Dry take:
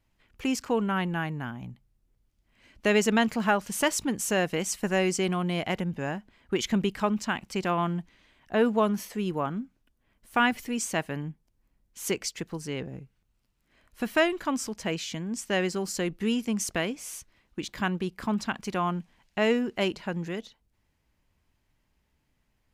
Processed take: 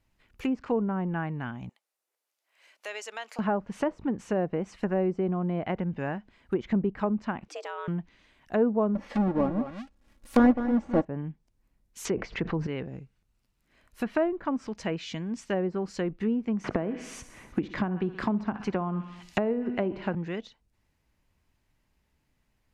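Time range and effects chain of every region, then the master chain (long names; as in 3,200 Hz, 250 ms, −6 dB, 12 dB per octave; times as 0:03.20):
0:01.69–0:03.39: high-pass filter 520 Hz 24 dB per octave + high-shelf EQ 8,600 Hz +5.5 dB + downward compressor 1.5 to 1, threshold −54 dBFS
0:07.48–0:07.88: downward compressor 2 to 1, threshold −41 dBFS + frequency shifter +260 Hz + one half of a high-frequency compander decoder only
0:08.95–0:11.05: each half-wave held at its own peak + comb filter 3.6 ms, depth 57% + single-tap delay 208 ms −11 dB
0:12.05–0:12.67: high-frequency loss of the air 110 metres + envelope flattener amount 70%
0:16.64–0:20.15: hum removal 246.3 Hz, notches 29 + repeating echo 62 ms, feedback 56%, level −17 dB + multiband upward and downward compressor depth 100%
whole clip: notch filter 3,200 Hz, Q 30; treble cut that deepens with the level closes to 750 Hz, closed at −23 dBFS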